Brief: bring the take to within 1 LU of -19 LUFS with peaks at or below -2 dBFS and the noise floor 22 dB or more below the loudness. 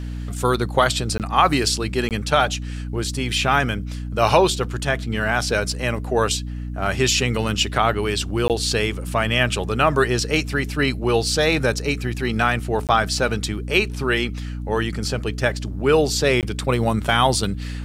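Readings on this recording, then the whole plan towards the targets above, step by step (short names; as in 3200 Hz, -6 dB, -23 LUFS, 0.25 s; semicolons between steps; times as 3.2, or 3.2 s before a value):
dropouts 5; longest dropout 18 ms; hum 60 Hz; harmonics up to 300 Hz; hum level -26 dBFS; loudness -21.0 LUFS; peak -2.5 dBFS; loudness target -19.0 LUFS
-> interpolate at 1.18/2.09/8.48/12.87/16.41, 18 ms; de-hum 60 Hz, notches 5; gain +2 dB; limiter -2 dBFS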